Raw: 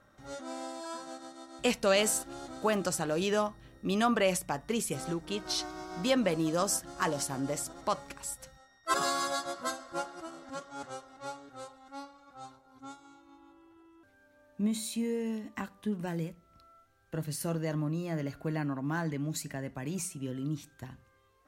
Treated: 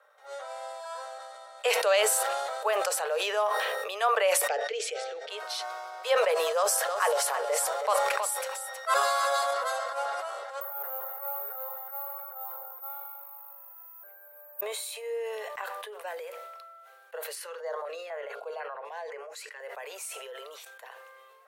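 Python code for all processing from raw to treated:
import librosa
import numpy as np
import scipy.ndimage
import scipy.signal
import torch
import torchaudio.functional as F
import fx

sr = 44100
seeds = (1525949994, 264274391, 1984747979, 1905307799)

y = fx.chain(x, sr, fx.lowpass(hz=6100.0, slope=24),
    fx.fixed_phaser(hz=430.0, stages=4), at=(4.48, 5.3))
y = fx.chain(y, sr, fx.echo_single(ms=319, db=-12.0),
    fx.env_flatten(amount_pct=50), at=(6.56, 9.51))
y = fx.chain(y, sr, fx.lowpass(hz=1700.0, slope=12),
    fx.resample_bad(factor=3, down='none', up='zero_stuff'),
    fx.band_squash(depth_pct=40), at=(10.61, 14.61))
y = fx.chain(y, sr, fx.air_absorb(metres=53.0),
    fx.hum_notches(base_hz=60, count=9),
    fx.filter_held_notch(hz=4.0, low_hz=690.0, high_hz=7000.0), at=(17.35, 19.6))
y = scipy.signal.sosfilt(scipy.signal.butter(16, 440.0, 'highpass', fs=sr, output='sos'), y)
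y = fx.peak_eq(y, sr, hz=6100.0, db=-8.5, octaves=1.1)
y = fx.sustainer(y, sr, db_per_s=22.0)
y = y * 10.0 ** (2.5 / 20.0)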